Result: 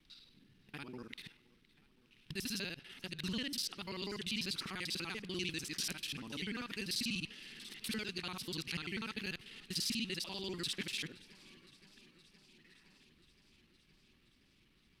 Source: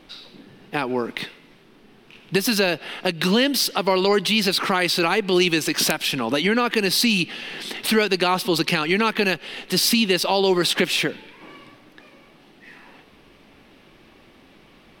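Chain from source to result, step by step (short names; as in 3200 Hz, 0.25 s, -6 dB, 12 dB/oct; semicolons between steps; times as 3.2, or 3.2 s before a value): local time reversal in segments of 49 ms; passive tone stack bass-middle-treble 6-0-2; treble ducked by the level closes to 2000 Hz, closed at -19.5 dBFS; warbling echo 0.517 s, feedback 74%, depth 82 cents, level -23 dB; gain -1 dB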